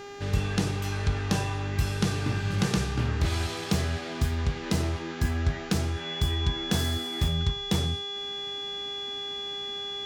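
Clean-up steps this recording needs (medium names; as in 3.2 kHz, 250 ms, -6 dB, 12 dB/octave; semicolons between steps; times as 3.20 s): de-hum 403 Hz, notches 18; band-stop 3.4 kHz, Q 30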